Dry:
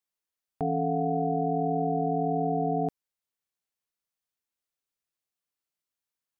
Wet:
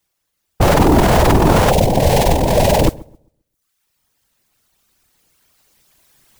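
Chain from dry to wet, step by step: cycle switcher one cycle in 2, inverted; recorder AGC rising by 5.8 dB/s; 1.72–2.88 s: static phaser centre 330 Hz, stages 6; reverb removal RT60 0.91 s; whisper effect; bass shelf 150 Hz +11.5 dB; filtered feedback delay 131 ms, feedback 28%, low-pass 1.1 kHz, level -21 dB; modulation noise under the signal 24 dB; loudness maximiser +18.5 dB; trim -1 dB

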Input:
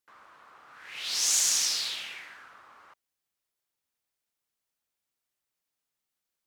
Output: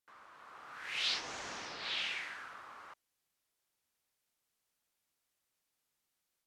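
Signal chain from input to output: low-pass that closes with the level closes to 1.2 kHz, closed at -25 dBFS; level rider gain up to 6 dB; trim -3.5 dB

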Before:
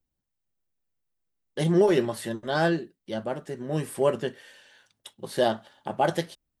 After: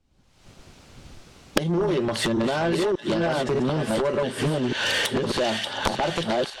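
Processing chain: chunks repeated in reverse 591 ms, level -4 dB; recorder AGC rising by 63 dB/s; low-pass 5.4 kHz 12 dB/octave; peaking EQ 1.8 kHz -5 dB 0.26 oct; compression 4:1, threshold -33 dBFS, peak gain reduction 20.5 dB; feedback echo behind a high-pass 584 ms, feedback 58%, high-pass 1.9 kHz, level -6 dB; Chebyshev shaper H 7 -8 dB, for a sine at -12.5 dBFS; trim +8 dB

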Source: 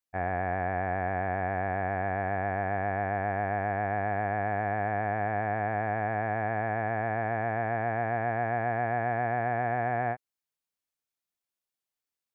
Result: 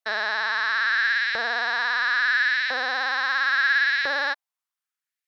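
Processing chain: speed mistake 33 rpm record played at 78 rpm; LFO high-pass saw up 0.74 Hz 570–2200 Hz; trim +3 dB

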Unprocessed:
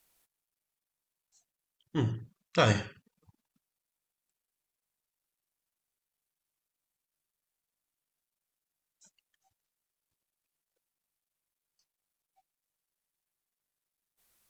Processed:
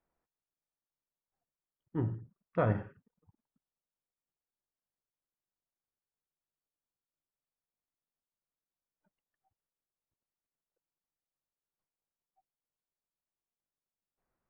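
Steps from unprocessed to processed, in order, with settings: Bessel low-pass 1.1 kHz, order 4; trim -3 dB

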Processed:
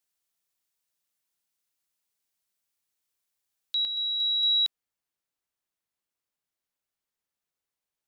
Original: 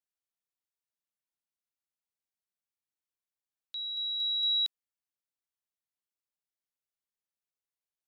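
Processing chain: treble shelf 3 kHz +6.5 dB, from 3.85 s -3 dB; trim +6.5 dB

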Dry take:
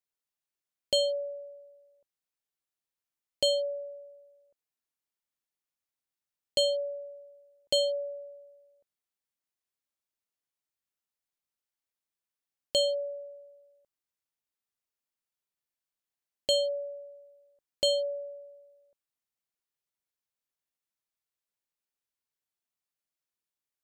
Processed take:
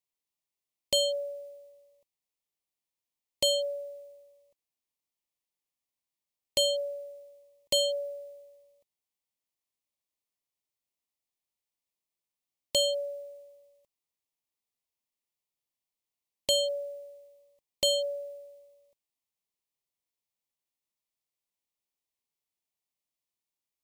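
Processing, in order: formants flattened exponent 0.6; Butterworth band-stop 1.5 kHz, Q 2.2

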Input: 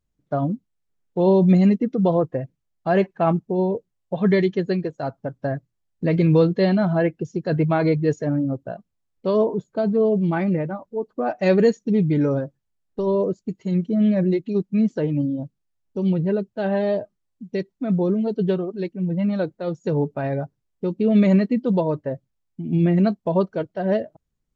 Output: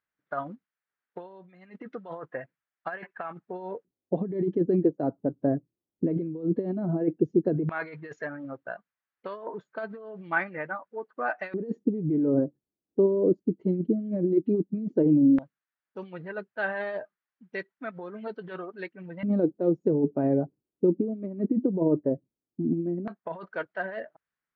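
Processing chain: 20.92–23.33 s: treble shelf 3.3 kHz -11.5 dB; compressor with a negative ratio -22 dBFS, ratio -0.5; LFO band-pass square 0.13 Hz 320–1600 Hz; distance through air 76 m; trim +5 dB

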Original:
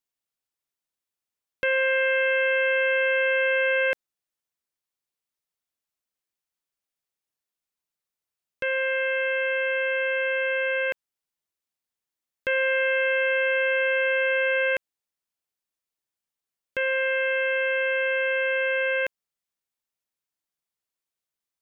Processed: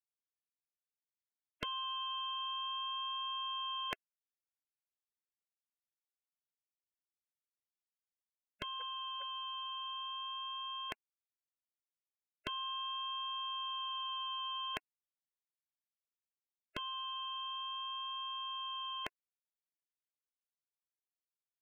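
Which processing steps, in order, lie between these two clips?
8.81–9.22 s: small resonant body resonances 890/1300 Hz, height 12 dB, ringing for 95 ms; spectral gate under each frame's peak -15 dB weak; vibrato 0.4 Hz 7.7 cents

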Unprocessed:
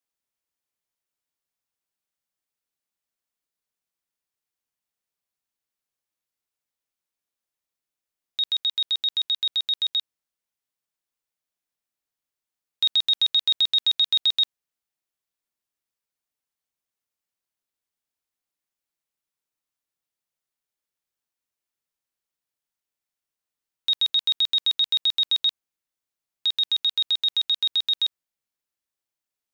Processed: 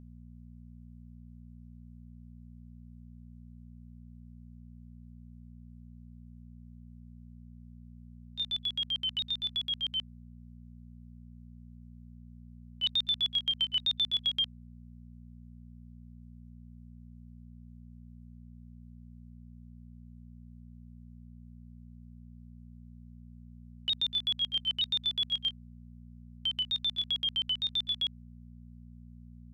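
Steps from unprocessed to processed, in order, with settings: sawtooth pitch modulation -4 st, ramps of 919 ms; mains buzz 60 Hz, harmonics 4, -42 dBFS -3 dB/octave; trim -8 dB

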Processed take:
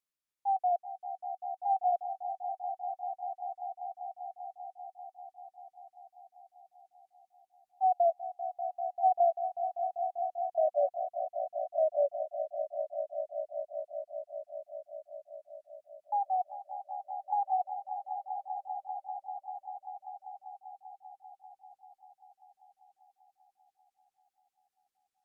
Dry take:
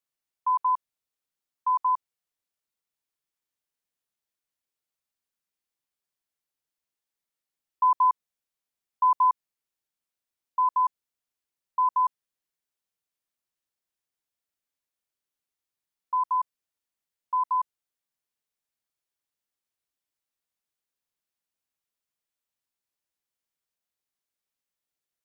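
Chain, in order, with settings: sawtooth pitch modulation -10.5 st, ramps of 1211 ms; echo with a slow build-up 196 ms, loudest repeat 5, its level -12 dB; trim -4 dB

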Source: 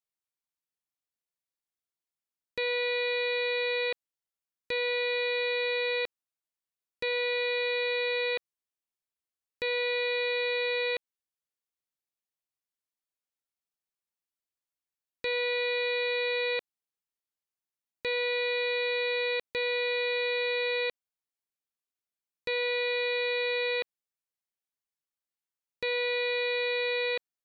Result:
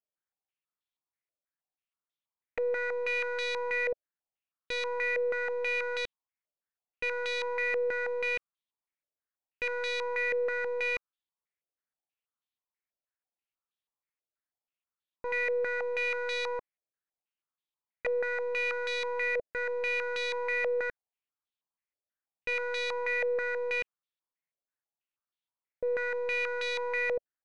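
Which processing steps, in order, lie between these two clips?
tracing distortion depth 0.13 ms; step-sequenced low-pass 6.2 Hz 600–3500 Hz; trim -5 dB

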